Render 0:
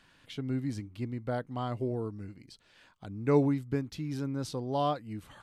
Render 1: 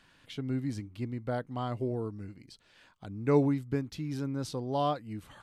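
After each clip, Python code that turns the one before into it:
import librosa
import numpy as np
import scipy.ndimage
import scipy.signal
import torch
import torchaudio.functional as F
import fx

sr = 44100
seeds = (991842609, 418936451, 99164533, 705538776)

y = x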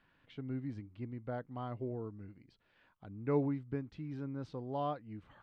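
y = scipy.signal.sosfilt(scipy.signal.butter(2, 2400.0, 'lowpass', fs=sr, output='sos'), x)
y = y * 10.0 ** (-7.0 / 20.0)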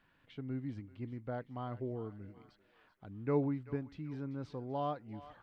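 y = fx.echo_thinned(x, sr, ms=388, feedback_pct=63, hz=970.0, wet_db=-13.0)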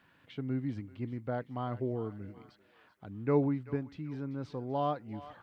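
y = fx.rider(x, sr, range_db=4, speed_s=2.0)
y = scipy.signal.sosfilt(scipy.signal.butter(2, 74.0, 'highpass', fs=sr, output='sos'), y)
y = y * 10.0 ** (2.5 / 20.0)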